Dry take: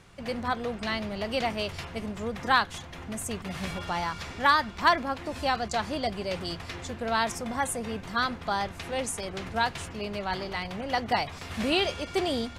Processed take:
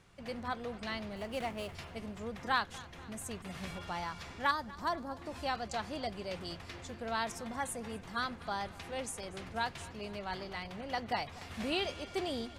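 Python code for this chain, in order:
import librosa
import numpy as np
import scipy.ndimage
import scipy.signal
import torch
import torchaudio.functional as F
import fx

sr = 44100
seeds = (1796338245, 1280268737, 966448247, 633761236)

y = fx.median_filter(x, sr, points=9, at=(1.16, 1.75))
y = fx.peak_eq(y, sr, hz=2400.0, db=-14.0, octaves=1.5, at=(4.51, 5.22))
y = fx.echo_feedback(y, sr, ms=241, feedback_pct=56, wet_db=-20)
y = F.gain(torch.from_numpy(y), -8.5).numpy()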